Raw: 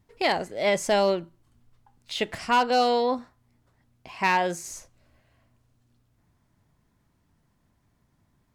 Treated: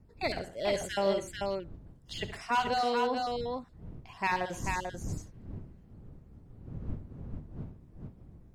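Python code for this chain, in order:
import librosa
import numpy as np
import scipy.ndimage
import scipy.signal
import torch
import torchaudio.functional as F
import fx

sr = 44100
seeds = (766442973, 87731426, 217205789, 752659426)

y = fx.spec_dropout(x, sr, seeds[0], share_pct=27)
y = fx.dmg_wind(y, sr, seeds[1], corner_hz=140.0, level_db=-39.0)
y = fx.echo_multitap(y, sr, ms=(71, 122, 440), db=(-12.5, -16.5, -4.0))
y = F.gain(torch.from_numpy(y), -7.0).numpy()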